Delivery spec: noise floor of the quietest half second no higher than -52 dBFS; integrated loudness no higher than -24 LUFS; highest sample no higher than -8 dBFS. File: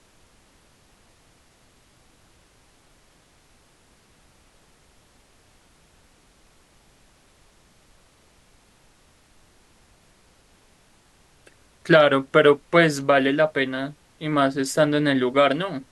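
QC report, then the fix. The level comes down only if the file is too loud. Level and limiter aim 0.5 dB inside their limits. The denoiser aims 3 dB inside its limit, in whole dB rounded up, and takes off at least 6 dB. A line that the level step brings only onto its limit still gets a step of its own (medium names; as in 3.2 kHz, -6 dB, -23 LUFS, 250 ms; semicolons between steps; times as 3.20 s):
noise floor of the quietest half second -58 dBFS: pass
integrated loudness -20.0 LUFS: fail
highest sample -4.5 dBFS: fail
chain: trim -4.5 dB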